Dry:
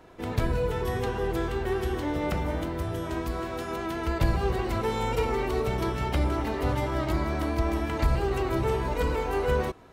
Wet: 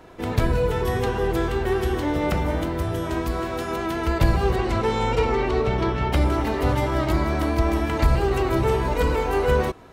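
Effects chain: 4.55–6.11 s: low-pass 9.2 kHz -> 3.6 kHz 12 dB/octave; trim +5.5 dB

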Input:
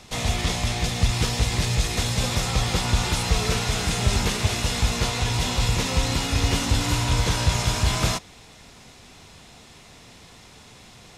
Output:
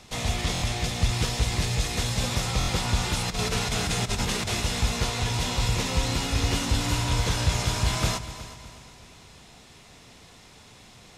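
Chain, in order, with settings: 3.28–4.61 s: compressor with a negative ratio -23 dBFS, ratio -0.5; multi-head delay 123 ms, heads second and third, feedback 44%, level -16 dB; buffer glitch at 0.53/2.59 s, samples 1024, times 3; trim -3 dB

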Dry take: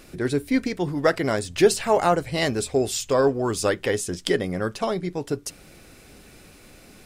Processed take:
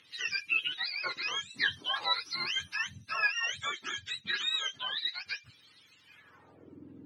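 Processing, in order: spectrum inverted on a logarithmic axis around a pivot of 830 Hz; band-pass sweep 3.5 kHz -> 310 Hz, 6.01–6.77 s; phaser 0.35 Hz, delay 4.4 ms, feedback 21%; trim +4 dB

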